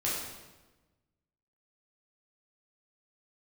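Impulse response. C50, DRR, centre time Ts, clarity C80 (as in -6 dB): 0.5 dB, -7.5 dB, 72 ms, 3.0 dB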